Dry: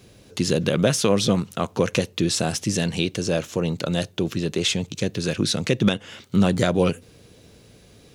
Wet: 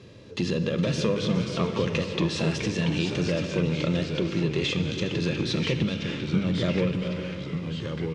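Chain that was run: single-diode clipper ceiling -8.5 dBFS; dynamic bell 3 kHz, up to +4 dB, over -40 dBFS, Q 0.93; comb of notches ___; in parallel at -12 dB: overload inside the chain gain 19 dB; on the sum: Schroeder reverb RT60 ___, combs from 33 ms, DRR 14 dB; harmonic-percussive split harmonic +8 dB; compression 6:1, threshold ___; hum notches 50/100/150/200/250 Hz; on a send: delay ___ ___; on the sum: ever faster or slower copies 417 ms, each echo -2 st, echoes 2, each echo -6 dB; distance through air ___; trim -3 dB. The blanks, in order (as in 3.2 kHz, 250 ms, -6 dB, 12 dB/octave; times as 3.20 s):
750 Hz, 2.4 s, -19 dBFS, 413 ms, -14.5 dB, 130 m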